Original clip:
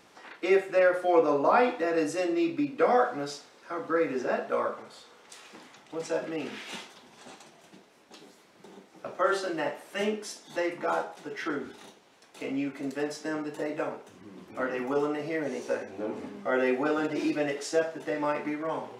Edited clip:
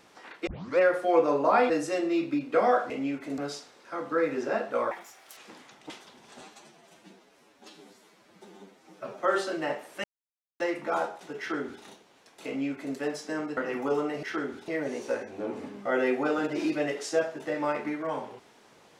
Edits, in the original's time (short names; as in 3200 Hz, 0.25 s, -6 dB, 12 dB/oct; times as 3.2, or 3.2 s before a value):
0.47 tape start 0.32 s
1.7–1.96 cut
4.69–5.42 speed 159%
5.95–6.79 cut
7.3–9.16 stretch 1.5×
10–10.56 mute
11.35–11.8 copy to 15.28
12.43–12.91 copy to 3.16
13.53–14.62 cut